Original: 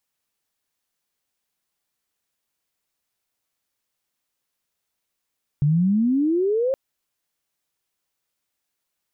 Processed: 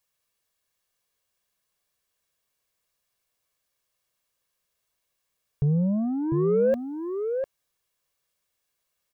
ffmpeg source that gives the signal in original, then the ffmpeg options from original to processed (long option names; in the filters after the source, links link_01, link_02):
-f lavfi -i "aevalsrc='pow(10,(-15-3.5*t/1.12)/20)*sin(2*PI*140*1.12/log(550/140)*(exp(log(550/140)*t/1.12)-1))':duration=1.12:sample_rate=44100"
-filter_complex "[0:a]asoftclip=type=tanh:threshold=-18.5dB,aecho=1:1:1.8:0.44,asplit=2[link_01][link_02];[link_02]adelay=699.7,volume=-6dB,highshelf=frequency=4000:gain=-15.7[link_03];[link_01][link_03]amix=inputs=2:normalize=0"